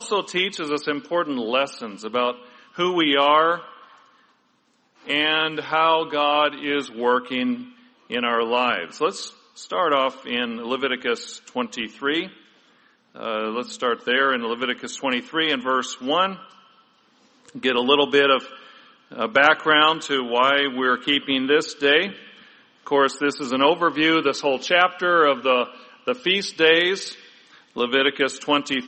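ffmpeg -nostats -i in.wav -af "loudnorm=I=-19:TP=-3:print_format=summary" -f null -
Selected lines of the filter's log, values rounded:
Input Integrated:    -20.9 LUFS
Input True Peak:      -2.3 dBTP
Input LRA:             5.8 LU
Input Threshold:     -31.8 LUFS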